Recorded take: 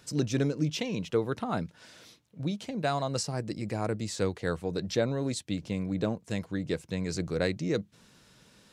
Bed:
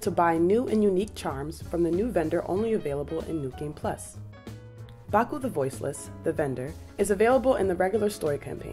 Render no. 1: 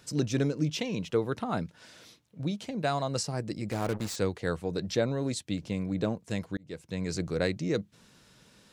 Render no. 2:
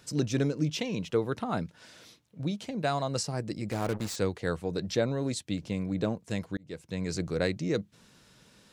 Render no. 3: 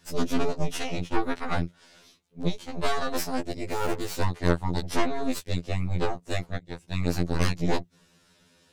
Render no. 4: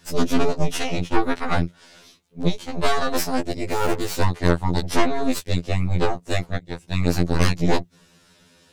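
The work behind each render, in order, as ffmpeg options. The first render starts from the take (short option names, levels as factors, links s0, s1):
-filter_complex "[0:a]asettb=1/sr,asplit=3[s0][s1][s2];[s0]atrim=end=3.714[s3];[s1]atrim=start=3.71:end=4.16,asetpts=PTS-STARTPTS,afade=t=in:d=0.004:c=qsin,afade=t=out:st=0.446:d=0.004:c=qsin,acrusher=bits=5:mix=0:aa=0.5[s4];[s2]atrim=start=4.156[s5];[s3][s4]acrossfade=d=0.004:c1=hsin:c2=qsin[s6];[s6][s5]acrossfade=d=0.004:c1=qsin:c2=hsin,asplit=2[s7][s8];[s7]atrim=end=6.57,asetpts=PTS-STARTPTS,afade=t=out:st=6.566:d=0.004:c=hsin[s9];[s8]atrim=start=6.57,asetpts=PTS-STARTPTS,afade=t=in:d=0.47[s10];[s9][s10]concat=n=2:v=0:a=1"
-af anull
-af "aeval=exprs='0.224*(cos(1*acos(clip(val(0)/0.224,-1,1)))-cos(1*PI/2))+0.1*(cos(6*acos(clip(val(0)/0.224,-1,1)))-cos(6*PI/2))':c=same,afftfilt=real='re*2*eq(mod(b,4),0)':imag='im*2*eq(mod(b,4),0)':win_size=2048:overlap=0.75"
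-af "volume=2,alimiter=limit=0.708:level=0:latency=1"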